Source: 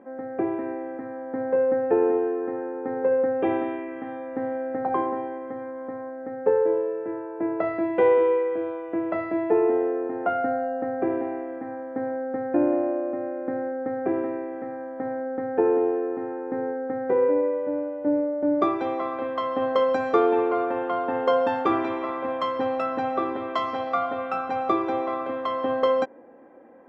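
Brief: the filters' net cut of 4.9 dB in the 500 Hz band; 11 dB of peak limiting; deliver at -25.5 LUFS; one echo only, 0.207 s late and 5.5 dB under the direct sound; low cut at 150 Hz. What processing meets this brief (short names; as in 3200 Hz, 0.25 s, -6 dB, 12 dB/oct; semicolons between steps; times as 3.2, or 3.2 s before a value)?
HPF 150 Hz; bell 500 Hz -5.5 dB; limiter -21 dBFS; echo 0.207 s -5.5 dB; gain +4.5 dB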